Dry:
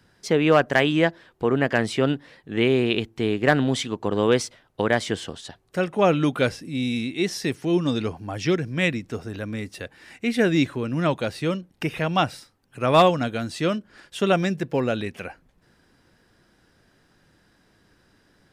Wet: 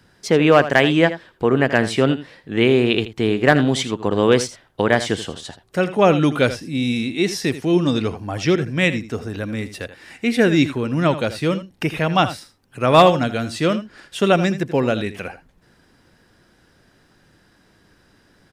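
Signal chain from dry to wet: echo 81 ms -13.5 dB; gain +4.5 dB

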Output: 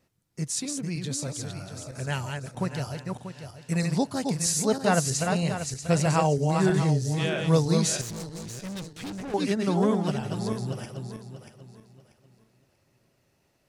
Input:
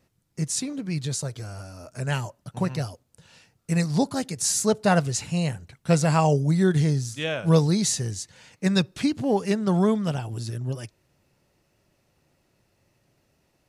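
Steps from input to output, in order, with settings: regenerating reverse delay 0.319 s, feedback 51%, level -4.5 dB; low shelf 130 Hz -3.5 dB; 8.01–9.34 tube stage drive 31 dB, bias 0.65; gain -2.5 dB

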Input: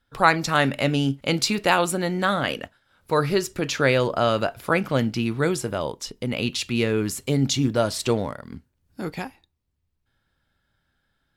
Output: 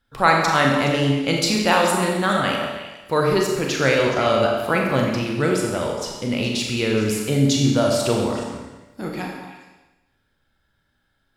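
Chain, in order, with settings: delay with a stepping band-pass 0.105 s, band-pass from 350 Hz, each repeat 1.4 oct, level -4.5 dB; Schroeder reverb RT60 1.1 s, combs from 29 ms, DRR 0.5 dB

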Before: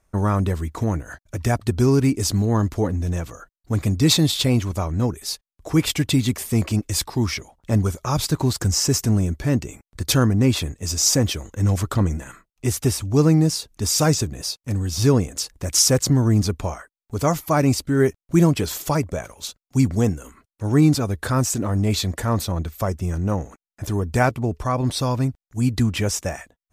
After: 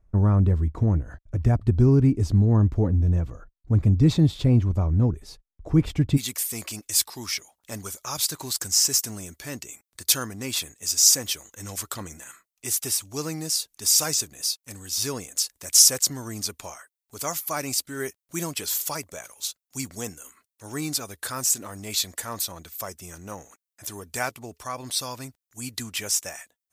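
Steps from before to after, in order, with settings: tilt -3.5 dB/oct, from 6.16 s +4 dB/oct; gain -8.5 dB

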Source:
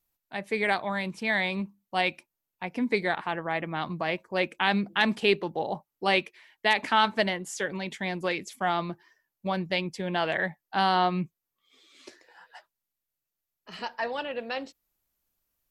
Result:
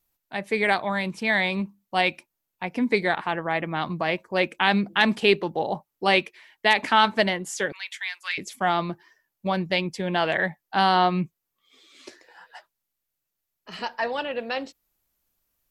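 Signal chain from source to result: 7.72–8.38 HPF 1400 Hz 24 dB/oct; gain +4 dB

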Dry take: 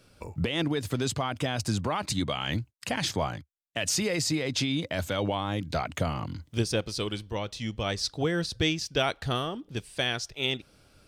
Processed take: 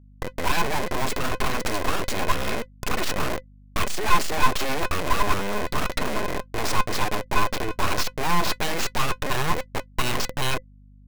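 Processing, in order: Schmitt trigger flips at -35 dBFS; low shelf 120 Hz -11.5 dB; small resonant body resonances 520/2000 Hz, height 17 dB, ringing for 85 ms; full-wave rectifier; hum 50 Hz, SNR 28 dB; gain +8 dB

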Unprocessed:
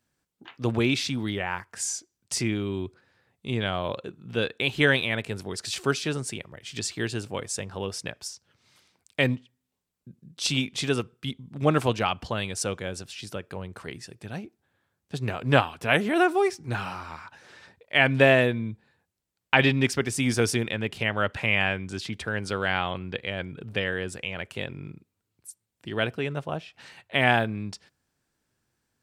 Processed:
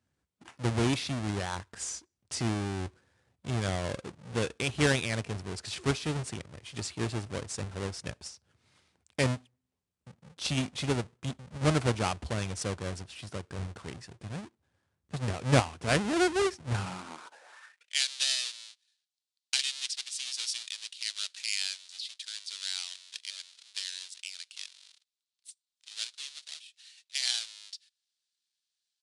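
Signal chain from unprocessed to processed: half-waves squared off; downsampling 22050 Hz; high-pass sweep 65 Hz -> 3900 Hz, 16.69–18; gain -9 dB

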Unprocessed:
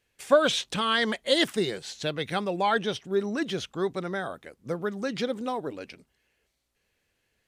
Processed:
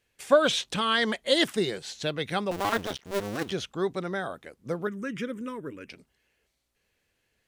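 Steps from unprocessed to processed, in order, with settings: 2.51–3.52 cycle switcher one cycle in 2, muted; 4.87–5.89 fixed phaser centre 1800 Hz, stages 4

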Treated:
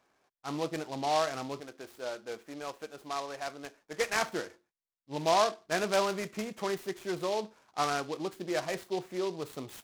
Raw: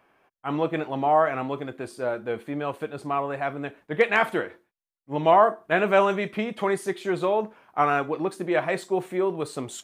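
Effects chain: 1.6–4.16 bell 99 Hz -12.5 dB 2.5 oct; noise-modulated delay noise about 3600 Hz, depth 0.053 ms; gain -8.5 dB

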